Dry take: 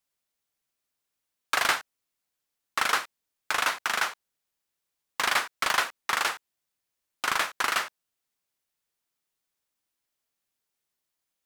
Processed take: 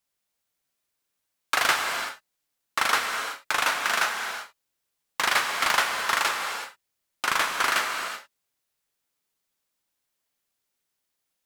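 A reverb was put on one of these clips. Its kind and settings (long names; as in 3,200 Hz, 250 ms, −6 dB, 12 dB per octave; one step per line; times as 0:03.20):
reverb whose tail is shaped and stops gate 400 ms flat, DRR 3 dB
level +1.5 dB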